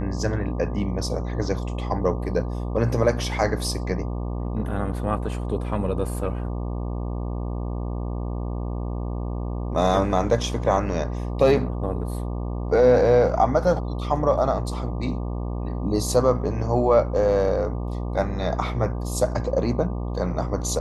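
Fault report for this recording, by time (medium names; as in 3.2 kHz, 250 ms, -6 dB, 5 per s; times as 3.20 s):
buzz 60 Hz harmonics 20 -28 dBFS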